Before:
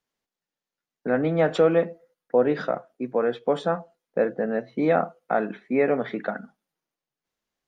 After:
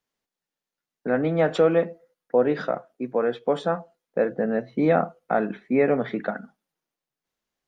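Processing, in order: 4.31–6.31 low shelf 170 Hz +8 dB

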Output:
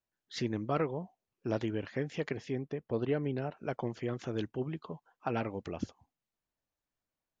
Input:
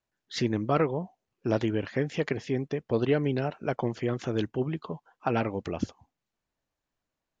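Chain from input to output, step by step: 2.55–3.57 high shelf 3500 Hz -9.5 dB; gain -6.5 dB

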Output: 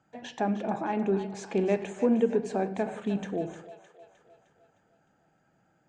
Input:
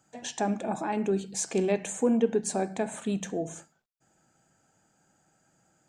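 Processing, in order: LPF 2900 Hz 12 dB/oct; on a send: split-band echo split 520 Hz, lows 83 ms, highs 0.307 s, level -11.5 dB

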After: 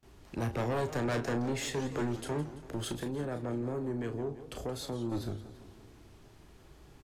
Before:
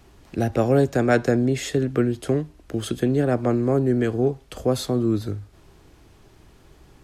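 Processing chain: gate with hold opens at -44 dBFS; 2.92–5.12 compressor 2.5:1, threshold -28 dBFS, peak gain reduction 9 dB; soft clip -23.5 dBFS, distortion -6 dB; doubler 34 ms -8.5 dB; warbling echo 0.168 s, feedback 58%, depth 209 cents, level -14 dB; gain -5.5 dB

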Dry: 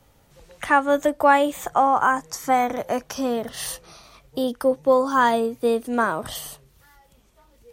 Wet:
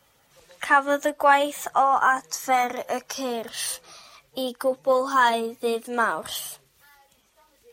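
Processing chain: bin magnitudes rounded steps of 15 dB; LPF 3100 Hz 6 dB/oct; tilt +3.5 dB/oct

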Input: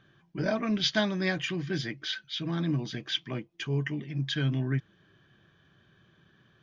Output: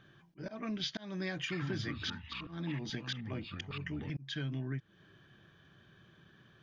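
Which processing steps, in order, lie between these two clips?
auto swell 0.425 s; compressor 6:1, threshold -36 dBFS, peak gain reduction 11.5 dB; 1.43–4.1 echoes that change speed 83 ms, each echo -5 st, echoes 2, each echo -6 dB; gain +1 dB

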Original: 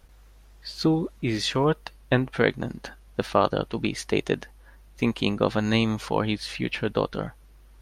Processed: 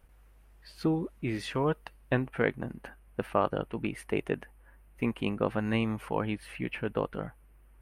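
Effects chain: band shelf 5000 Hz -9.5 dB 1.3 oct, from 2.28 s -16 dB; gain -6 dB

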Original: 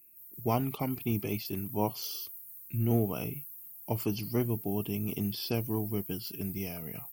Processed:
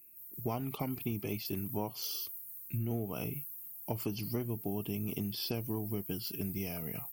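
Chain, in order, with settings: compressor 6:1, threshold -33 dBFS, peak gain reduction 10.5 dB; gain +1 dB

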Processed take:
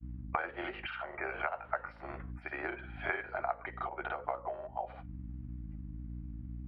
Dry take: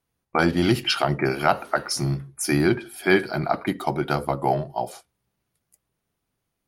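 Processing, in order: HPF 530 Hz 24 dB/oct; hum 60 Hz, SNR 19 dB; compressor 6:1, threshold -38 dBFS, peak gain reduction 22 dB; inverse Chebyshev low-pass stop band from 5800 Hz, stop band 50 dB; grains, spray 35 ms, pitch spread up and down by 0 st; gain +6.5 dB

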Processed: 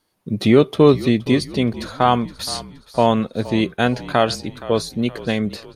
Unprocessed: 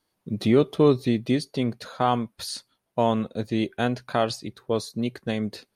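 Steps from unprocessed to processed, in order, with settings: dynamic EQ 2200 Hz, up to +3 dB, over -39 dBFS, Q 0.75; frequency-shifting echo 0.47 s, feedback 47%, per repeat -41 Hz, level -17 dB; gain +6 dB

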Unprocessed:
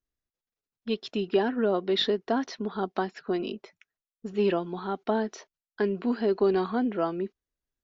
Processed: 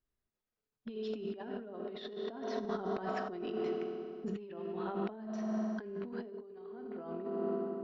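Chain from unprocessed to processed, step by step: on a send at -4.5 dB: reverb RT60 2.4 s, pre-delay 4 ms; on the sum: negative-ratio compressor -35 dBFS, ratio -1; high shelf 3300 Hz -10.5 dB; gain -5.5 dB

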